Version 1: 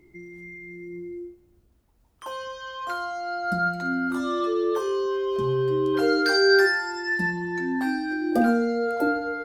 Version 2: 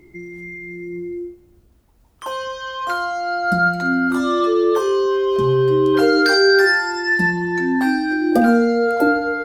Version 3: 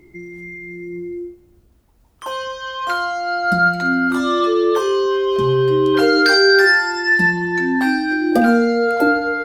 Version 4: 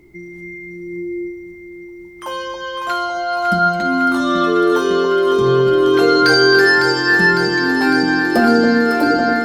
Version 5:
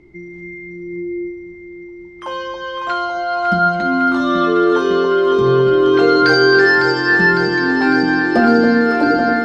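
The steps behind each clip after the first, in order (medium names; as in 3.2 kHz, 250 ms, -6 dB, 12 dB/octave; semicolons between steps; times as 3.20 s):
loudness maximiser +12.5 dB; trim -4.5 dB
dynamic bell 2.8 kHz, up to +5 dB, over -32 dBFS, Q 0.73
echo whose repeats swap between lows and highs 277 ms, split 930 Hz, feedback 88%, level -6 dB
distance through air 120 m; trim +1 dB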